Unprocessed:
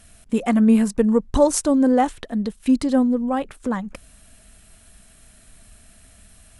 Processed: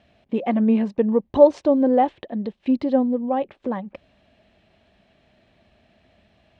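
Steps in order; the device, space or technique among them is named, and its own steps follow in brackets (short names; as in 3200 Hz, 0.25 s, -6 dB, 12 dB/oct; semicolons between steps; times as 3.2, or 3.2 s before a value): guitar cabinet (speaker cabinet 99–3700 Hz, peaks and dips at 350 Hz +7 dB, 570 Hz +8 dB, 810 Hz +5 dB, 1400 Hz -8 dB); gain -4 dB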